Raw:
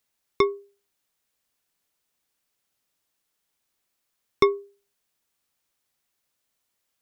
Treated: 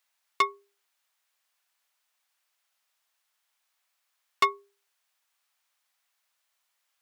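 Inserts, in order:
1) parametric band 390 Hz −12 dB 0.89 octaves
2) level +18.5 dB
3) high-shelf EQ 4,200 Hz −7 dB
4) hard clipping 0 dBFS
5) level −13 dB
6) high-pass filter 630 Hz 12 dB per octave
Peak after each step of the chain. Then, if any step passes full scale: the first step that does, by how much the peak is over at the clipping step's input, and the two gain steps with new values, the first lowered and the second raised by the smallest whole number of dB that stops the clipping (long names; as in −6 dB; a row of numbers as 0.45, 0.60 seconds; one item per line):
−7.5, +11.0, +9.5, 0.0, −13.0, −8.0 dBFS
step 2, 9.5 dB
step 2 +8.5 dB, step 5 −3 dB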